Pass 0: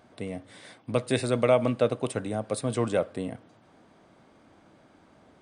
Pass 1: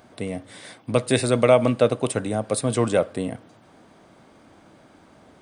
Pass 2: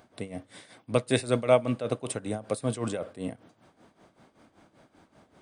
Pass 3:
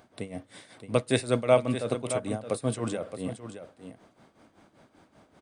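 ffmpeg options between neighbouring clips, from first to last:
-af "highshelf=f=7.6k:g=6.5,volume=5.5dB"
-af "tremolo=f=5.2:d=0.78,volume=-4dB"
-af "aecho=1:1:620:0.299"

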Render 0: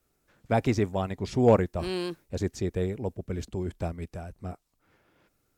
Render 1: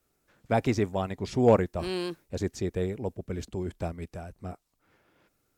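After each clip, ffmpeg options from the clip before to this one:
-af "lowshelf=f=130:g=-3.5"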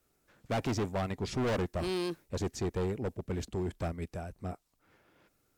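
-af "volume=28.5dB,asoftclip=hard,volume=-28.5dB"

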